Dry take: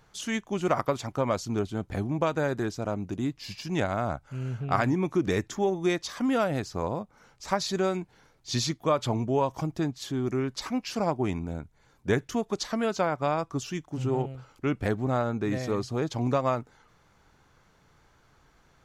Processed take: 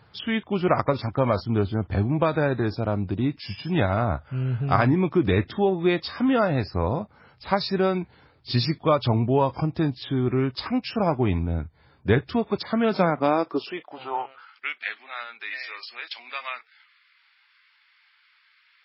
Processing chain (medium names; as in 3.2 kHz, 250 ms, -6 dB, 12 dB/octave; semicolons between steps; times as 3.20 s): high-pass sweep 77 Hz -> 2.2 kHz, 12.51–14.73 s; trim +4.5 dB; MP3 16 kbps 12 kHz